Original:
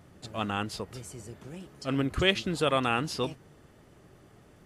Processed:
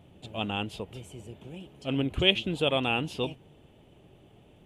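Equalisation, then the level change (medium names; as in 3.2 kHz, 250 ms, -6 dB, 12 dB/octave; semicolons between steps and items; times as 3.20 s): high-order bell 1.5 kHz -10 dB 1.1 oct; resonant high shelf 3.9 kHz -6.5 dB, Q 3; 0.0 dB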